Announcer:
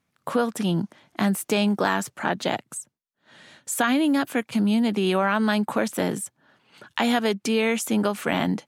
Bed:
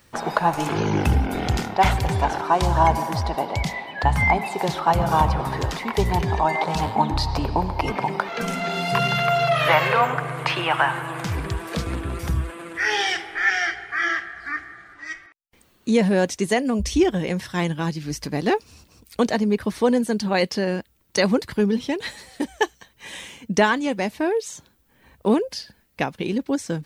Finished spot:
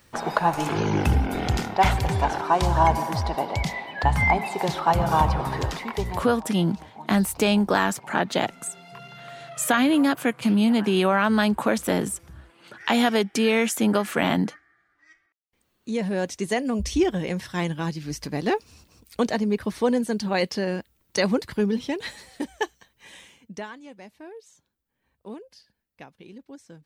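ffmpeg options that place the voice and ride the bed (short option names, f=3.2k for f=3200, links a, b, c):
-filter_complex "[0:a]adelay=5900,volume=1.5dB[a];[1:a]volume=17.5dB,afade=t=out:st=5.62:d=0.78:silence=0.0944061,afade=t=in:st=15.31:d=1.42:silence=0.112202,afade=t=out:st=22.17:d=1.51:silence=0.141254[b];[a][b]amix=inputs=2:normalize=0"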